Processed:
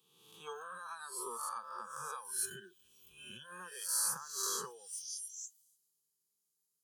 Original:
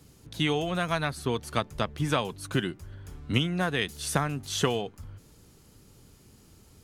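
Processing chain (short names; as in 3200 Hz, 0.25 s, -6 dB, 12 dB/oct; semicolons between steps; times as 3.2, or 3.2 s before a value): spectral swells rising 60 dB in 1.51 s; delay with a stepping band-pass 0.287 s, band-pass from 2700 Hz, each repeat 0.7 oct, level -8.5 dB; spectral noise reduction 20 dB; dynamic EQ 1500 Hz, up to +7 dB, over -41 dBFS, Q 1.4; compressor 8:1, threshold -35 dBFS, peak gain reduction 19 dB; HPF 75 Hz; RIAA curve recording; fixed phaser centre 410 Hz, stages 8; notch comb 710 Hz; three-band expander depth 40%; gain -3 dB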